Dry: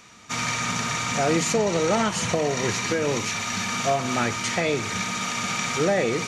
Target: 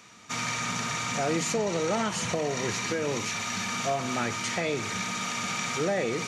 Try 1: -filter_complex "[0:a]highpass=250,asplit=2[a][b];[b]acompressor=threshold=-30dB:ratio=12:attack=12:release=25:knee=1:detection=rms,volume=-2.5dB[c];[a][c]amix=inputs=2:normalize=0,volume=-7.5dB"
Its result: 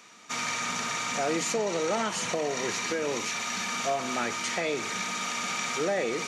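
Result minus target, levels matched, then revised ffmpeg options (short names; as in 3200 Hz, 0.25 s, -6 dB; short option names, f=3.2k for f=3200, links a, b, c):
125 Hz band -8.0 dB
-filter_complex "[0:a]highpass=88,asplit=2[a][b];[b]acompressor=threshold=-30dB:ratio=12:attack=12:release=25:knee=1:detection=rms,volume=-2.5dB[c];[a][c]amix=inputs=2:normalize=0,volume=-7.5dB"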